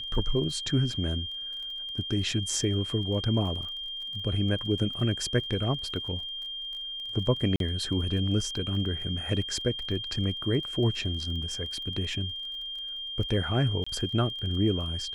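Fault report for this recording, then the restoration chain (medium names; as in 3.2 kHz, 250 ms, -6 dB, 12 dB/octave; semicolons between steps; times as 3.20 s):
crackle 22 per s -38 dBFS
whine 3.2 kHz -34 dBFS
7.56–7.60 s: dropout 42 ms
13.84–13.87 s: dropout 25 ms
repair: de-click; band-stop 3.2 kHz, Q 30; interpolate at 7.56 s, 42 ms; interpolate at 13.84 s, 25 ms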